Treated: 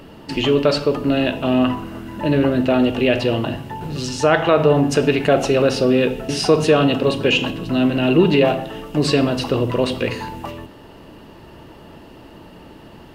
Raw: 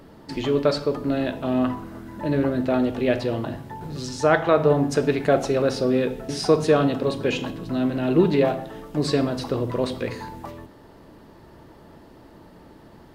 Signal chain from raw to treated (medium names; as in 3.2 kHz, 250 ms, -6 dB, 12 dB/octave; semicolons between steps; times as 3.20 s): peaking EQ 2.8 kHz +13.5 dB 0.23 oct; in parallel at +2 dB: peak limiter -13.5 dBFS, peak gain reduction 9.5 dB; on the sum: trim -1 dB